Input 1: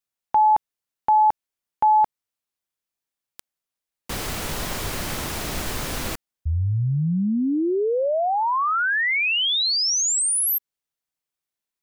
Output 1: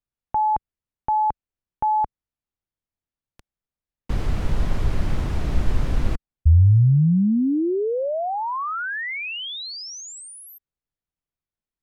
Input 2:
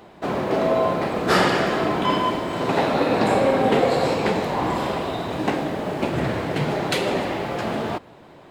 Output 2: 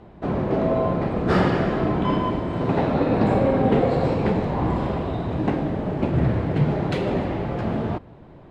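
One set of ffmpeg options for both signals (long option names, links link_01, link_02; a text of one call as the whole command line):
ffmpeg -i in.wav -af "aemphasis=mode=reproduction:type=riaa,volume=-4.5dB" out.wav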